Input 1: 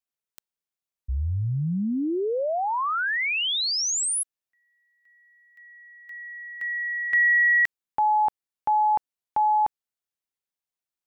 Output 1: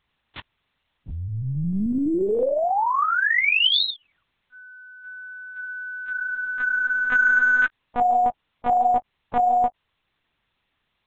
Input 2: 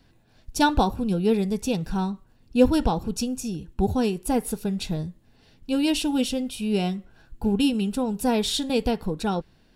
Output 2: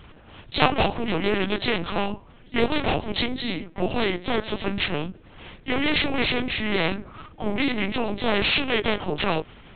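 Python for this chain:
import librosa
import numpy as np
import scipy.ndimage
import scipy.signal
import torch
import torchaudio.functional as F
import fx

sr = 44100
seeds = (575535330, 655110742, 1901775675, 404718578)

y = fx.partial_stretch(x, sr, pct=88)
y = scipy.signal.sosfilt(scipy.signal.butter(2, 220.0, 'highpass', fs=sr, output='sos'), y)
y = fx.lpc_vocoder(y, sr, seeds[0], excitation='pitch_kept', order=8)
y = fx.spectral_comp(y, sr, ratio=2.0)
y = y * librosa.db_to_amplitude(4.5)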